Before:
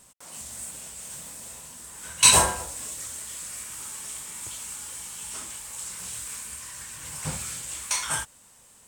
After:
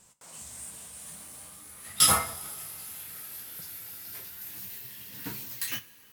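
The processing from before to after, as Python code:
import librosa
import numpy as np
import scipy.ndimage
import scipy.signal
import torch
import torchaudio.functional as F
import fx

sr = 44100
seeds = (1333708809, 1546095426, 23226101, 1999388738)

y = fx.speed_glide(x, sr, from_pct=95, to_pct=195)
y = fx.rev_double_slope(y, sr, seeds[0], early_s=0.26, late_s=3.3, knee_db=-20, drr_db=8.0)
y = y * librosa.db_to_amplitude(-5.0)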